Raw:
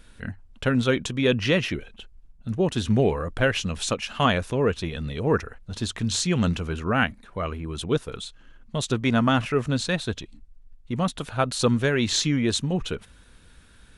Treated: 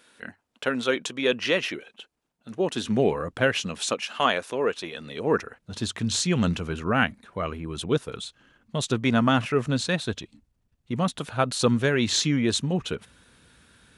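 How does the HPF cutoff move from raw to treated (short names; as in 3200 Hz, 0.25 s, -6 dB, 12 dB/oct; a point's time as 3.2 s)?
2.49 s 350 Hz
3.3 s 120 Hz
4.22 s 370 Hz
4.94 s 370 Hz
5.85 s 98 Hz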